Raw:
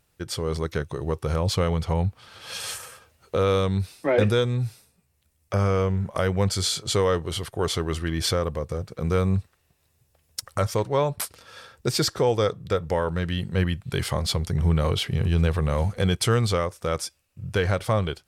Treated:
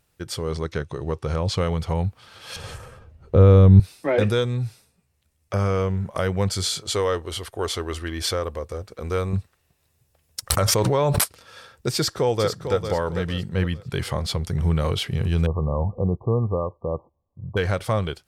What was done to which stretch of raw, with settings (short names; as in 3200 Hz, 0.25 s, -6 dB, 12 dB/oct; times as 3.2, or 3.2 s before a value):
0.52–1.57 LPF 7600 Hz
2.56–3.8 tilt -4.5 dB/oct
4.59–5.53 high shelf 11000 Hz -7 dB
6.84–9.33 bell 150 Hz -15 dB 0.69 oct
10.5–11.24 fast leveller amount 100%
11.94–12.83 echo throw 0.45 s, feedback 35%, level -8.5 dB
13.49–14.46 high shelf 4500 Hz -4.5 dB
15.46–17.57 brick-wall FIR low-pass 1200 Hz